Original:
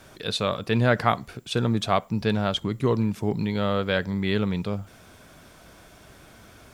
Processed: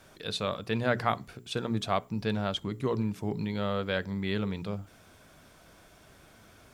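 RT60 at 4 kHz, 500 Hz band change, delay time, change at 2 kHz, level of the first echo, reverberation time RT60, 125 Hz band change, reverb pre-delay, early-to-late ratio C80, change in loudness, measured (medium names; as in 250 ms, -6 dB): no reverb, -6.5 dB, no echo, -6.0 dB, no echo, no reverb, -7.5 dB, no reverb, no reverb, -6.5 dB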